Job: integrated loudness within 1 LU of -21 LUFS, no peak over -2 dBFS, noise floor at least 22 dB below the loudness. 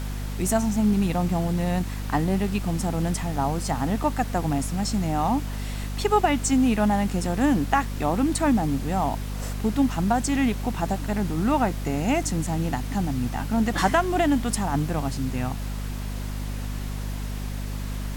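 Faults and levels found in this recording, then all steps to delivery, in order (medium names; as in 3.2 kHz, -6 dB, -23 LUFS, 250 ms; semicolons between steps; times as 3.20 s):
hum 50 Hz; highest harmonic 250 Hz; hum level -28 dBFS; noise floor -31 dBFS; noise floor target -47 dBFS; loudness -25.0 LUFS; peak level -7.0 dBFS; loudness target -21.0 LUFS
-> hum notches 50/100/150/200/250 Hz; noise print and reduce 16 dB; trim +4 dB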